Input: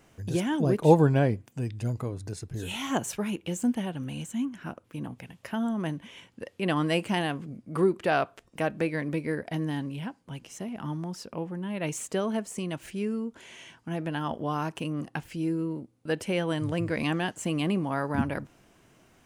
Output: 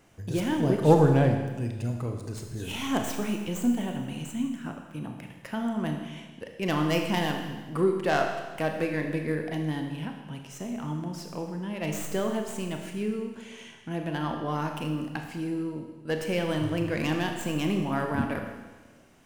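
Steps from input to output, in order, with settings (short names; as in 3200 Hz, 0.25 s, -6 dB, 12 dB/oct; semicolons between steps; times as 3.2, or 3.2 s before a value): tracing distortion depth 0.078 ms; Schroeder reverb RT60 1.3 s, combs from 26 ms, DRR 3.5 dB; gain -1 dB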